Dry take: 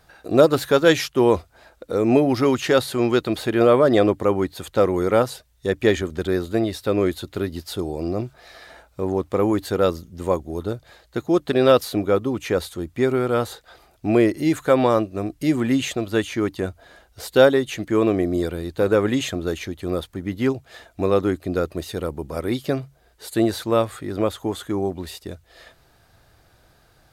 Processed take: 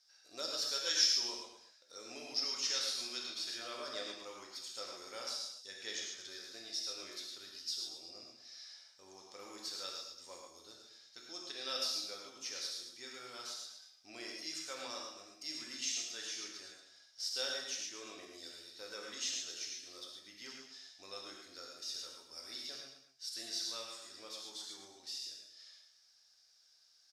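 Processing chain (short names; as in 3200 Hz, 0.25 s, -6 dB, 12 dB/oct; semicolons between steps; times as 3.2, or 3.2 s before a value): band-pass 5400 Hz, Q 9.3; tapped delay 0.111/0.23 s -9/-15 dB; non-linear reverb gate 0.17 s flat, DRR -1.5 dB; gain +4.5 dB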